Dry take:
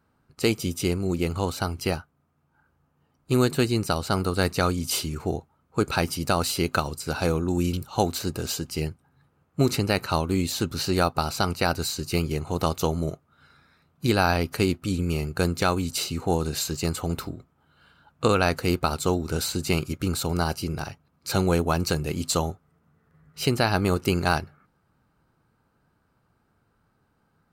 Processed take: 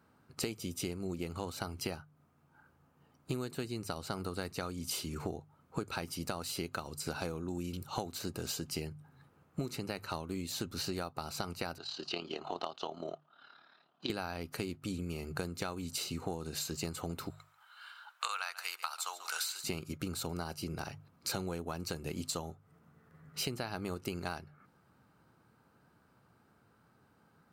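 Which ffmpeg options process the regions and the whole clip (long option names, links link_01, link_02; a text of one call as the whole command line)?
ffmpeg -i in.wav -filter_complex "[0:a]asettb=1/sr,asplit=3[link_01][link_02][link_03];[link_01]atrim=end=11.784[link_04];[link_02]atrim=start=11.78:end=14.1,asetpts=PTS-STARTPTS,afade=type=in:duration=0.004:curve=qsin,afade=type=out:start_time=2.316:duration=0.004:curve=qsin,tremolo=f=36:d=0.621,highpass=410,equalizer=frequency=490:width_type=q:width=4:gain=-7,equalizer=frequency=690:width_type=q:width=4:gain=6,equalizer=frequency=2200:width_type=q:width=4:gain=-10,equalizer=frequency=3100:width_type=q:width=4:gain=7,lowpass=frequency=4600:width=0.5412,lowpass=frequency=4600:width=1.3066,asoftclip=type=hard:threshold=-11dB[link_05];[link_03]atrim=start=14.096[link_06];[link_04][link_05]acrossfade=duration=0.004:curve1=hsin:curve2=qsin[link_07];[link_07][link_06]acrossfade=duration=0.004:curve1=qsin:curve2=hsin,asettb=1/sr,asplit=3[link_08][link_09][link_10];[link_08]atrim=end=17.304[link_11];[link_09]atrim=start=17.3:end=19.64,asetpts=PTS-STARTPTS,afade=type=in:duration=0.004:curve=qsin,afade=type=out:start_time=2.336:duration=0.004:curve=qsin,highpass=frequency=1000:width=0.5412,highpass=frequency=1000:width=1.3066,acontrast=33,aecho=1:1:140:0.126,atrim=end_sample=103194[link_12];[link_10]atrim=start=19.636[link_13];[link_11][link_12]acrossfade=duration=0.004:curve1=hsin:curve2=qsin[link_14];[link_14][link_13]acrossfade=duration=0.004:curve1=qsin:curve2=hsin,highpass=88,bandreject=frequency=50:width_type=h:width=6,bandreject=frequency=100:width_type=h:width=6,bandreject=frequency=150:width_type=h:width=6,acompressor=threshold=-36dB:ratio=16,volume=2dB" out.wav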